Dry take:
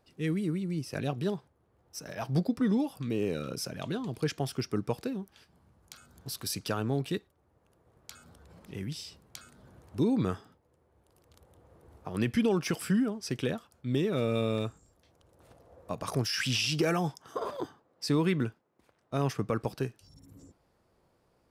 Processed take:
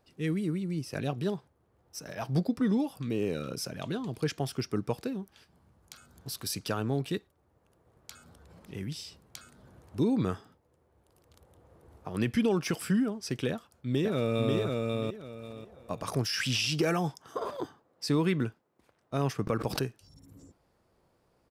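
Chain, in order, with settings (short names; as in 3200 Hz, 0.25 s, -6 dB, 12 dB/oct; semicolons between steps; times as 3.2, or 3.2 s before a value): 13.5–14.56 echo throw 0.54 s, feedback 25%, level -2.5 dB; 19.47–19.88 backwards sustainer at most 86 dB/s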